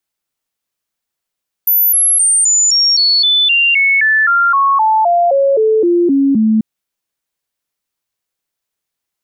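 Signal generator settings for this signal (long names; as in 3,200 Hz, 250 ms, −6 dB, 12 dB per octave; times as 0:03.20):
stepped sweep 14,000 Hz down, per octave 3, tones 19, 0.26 s, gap 0.00 s −8 dBFS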